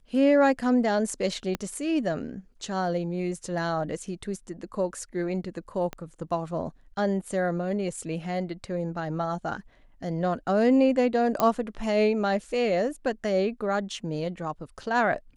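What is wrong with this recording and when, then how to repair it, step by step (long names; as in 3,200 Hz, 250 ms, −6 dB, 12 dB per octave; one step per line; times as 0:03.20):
0:01.55: click −15 dBFS
0:05.93: click −20 dBFS
0:11.40: click −9 dBFS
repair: click removal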